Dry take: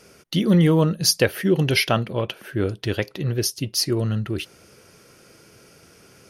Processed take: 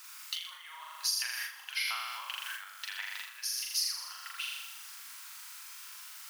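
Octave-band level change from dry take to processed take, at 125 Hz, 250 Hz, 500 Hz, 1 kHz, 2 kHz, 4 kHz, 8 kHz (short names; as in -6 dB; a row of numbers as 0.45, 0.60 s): under -40 dB, under -40 dB, under -40 dB, -12.0 dB, -9.0 dB, -8.0 dB, -8.0 dB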